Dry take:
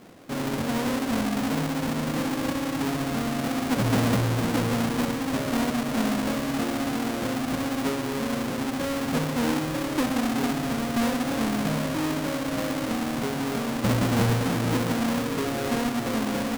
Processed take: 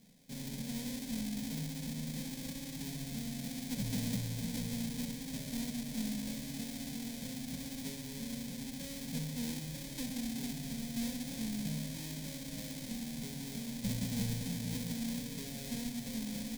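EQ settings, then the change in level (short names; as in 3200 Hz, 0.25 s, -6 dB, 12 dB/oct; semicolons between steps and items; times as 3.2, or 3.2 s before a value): passive tone stack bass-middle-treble 6-0-2; fixed phaser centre 340 Hz, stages 6; notch 2800 Hz, Q 7; +8.0 dB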